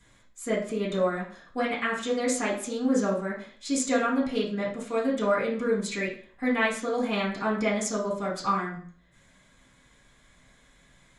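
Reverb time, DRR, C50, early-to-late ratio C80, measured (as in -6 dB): 0.50 s, -9.0 dB, 6.5 dB, 11.0 dB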